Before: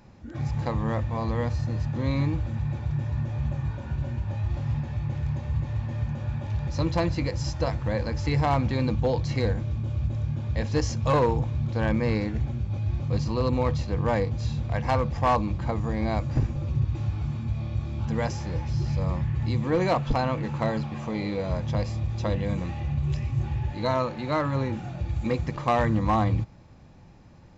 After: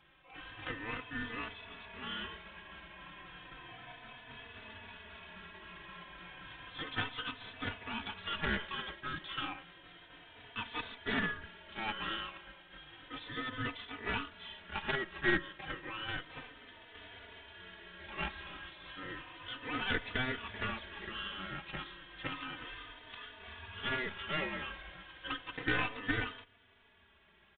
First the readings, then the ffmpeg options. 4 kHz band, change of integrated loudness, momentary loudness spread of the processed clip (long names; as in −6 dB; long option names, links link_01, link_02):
+1.0 dB, −12.5 dB, 16 LU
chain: -filter_complex "[0:a]highpass=1300,aeval=exprs='val(0)*sin(2*PI*770*n/s)':channel_layout=same,aeval=exprs='clip(val(0),-1,0.00944)':channel_layout=same,aresample=8000,aresample=44100,asplit=2[link_01][link_02];[link_02]adelay=3.3,afreqshift=-0.32[link_03];[link_01][link_03]amix=inputs=2:normalize=1,volume=8dB"